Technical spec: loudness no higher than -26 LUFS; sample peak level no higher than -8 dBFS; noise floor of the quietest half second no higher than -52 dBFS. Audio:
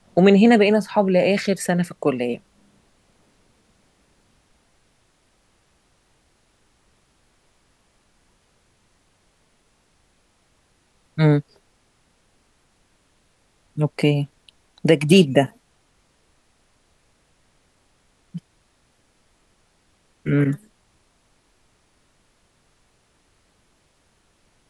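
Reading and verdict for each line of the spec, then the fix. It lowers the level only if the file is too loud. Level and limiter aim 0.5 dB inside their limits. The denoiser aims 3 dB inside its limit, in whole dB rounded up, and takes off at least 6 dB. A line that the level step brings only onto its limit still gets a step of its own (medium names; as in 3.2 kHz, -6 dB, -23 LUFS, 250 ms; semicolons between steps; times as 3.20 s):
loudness -19.0 LUFS: fail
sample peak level -2.0 dBFS: fail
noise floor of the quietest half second -63 dBFS: pass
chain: trim -7.5 dB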